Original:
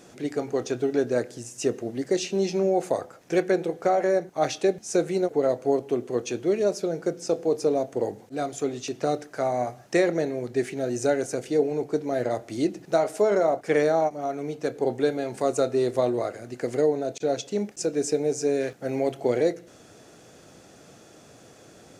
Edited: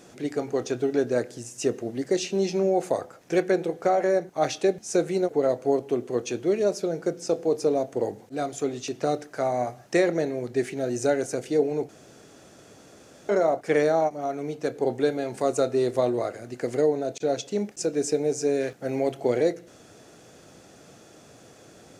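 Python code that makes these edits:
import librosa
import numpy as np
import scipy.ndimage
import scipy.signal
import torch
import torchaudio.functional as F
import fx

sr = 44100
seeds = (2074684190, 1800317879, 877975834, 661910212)

y = fx.edit(x, sr, fx.room_tone_fill(start_s=11.89, length_s=1.4), tone=tone)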